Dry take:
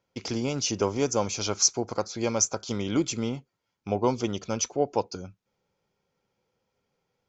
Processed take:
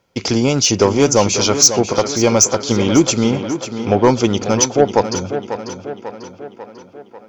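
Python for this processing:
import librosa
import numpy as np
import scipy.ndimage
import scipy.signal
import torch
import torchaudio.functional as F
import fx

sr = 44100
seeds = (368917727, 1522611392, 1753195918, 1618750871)

y = fx.fold_sine(x, sr, drive_db=5, ceiling_db=-7.5)
y = fx.echo_tape(y, sr, ms=544, feedback_pct=62, wet_db=-7, lp_hz=4300.0, drive_db=11.0, wow_cents=7)
y = y * librosa.db_to_amplitude(5.0)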